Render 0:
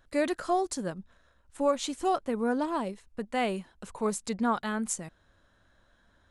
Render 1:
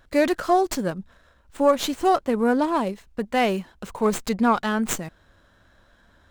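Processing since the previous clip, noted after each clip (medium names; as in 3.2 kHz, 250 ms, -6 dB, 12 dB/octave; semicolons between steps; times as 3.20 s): sliding maximum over 3 samples; trim +8 dB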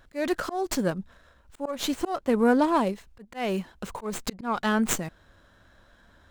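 slow attack 263 ms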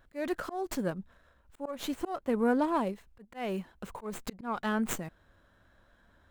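peaking EQ 5.4 kHz -5.5 dB 1.5 oct; trim -6 dB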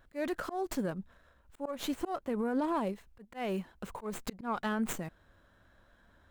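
peak limiter -24 dBFS, peak gain reduction 8.5 dB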